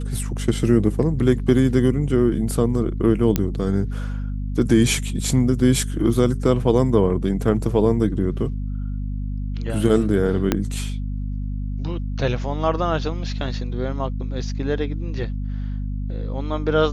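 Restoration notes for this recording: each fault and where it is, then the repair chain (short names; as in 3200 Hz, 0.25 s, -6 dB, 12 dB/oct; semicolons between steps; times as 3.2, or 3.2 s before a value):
hum 50 Hz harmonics 5 -26 dBFS
3.36 pop -5 dBFS
10.52 pop -4 dBFS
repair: de-click; de-hum 50 Hz, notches 5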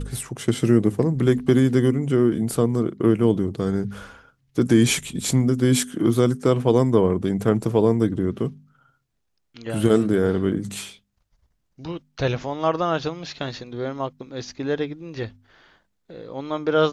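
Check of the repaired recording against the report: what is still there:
10.52 pop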